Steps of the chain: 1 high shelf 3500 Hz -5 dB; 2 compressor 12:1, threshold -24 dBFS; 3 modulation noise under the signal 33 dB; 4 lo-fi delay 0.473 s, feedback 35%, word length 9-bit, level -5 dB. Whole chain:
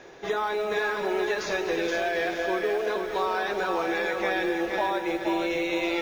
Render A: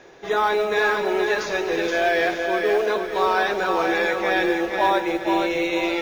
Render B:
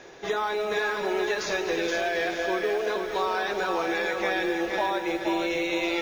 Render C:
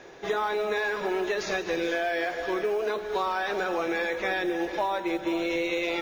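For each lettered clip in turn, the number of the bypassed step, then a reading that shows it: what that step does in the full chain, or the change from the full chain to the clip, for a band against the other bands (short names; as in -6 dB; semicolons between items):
2, mean gain reduction 4.5 dB; 1, 8 kHz band +3.5 dB; 4, loudness change -1.0 LU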